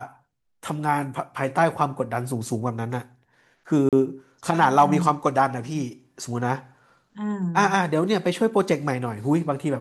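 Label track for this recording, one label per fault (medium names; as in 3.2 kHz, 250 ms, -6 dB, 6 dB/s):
3.890000	3.930000	dropout 37 ms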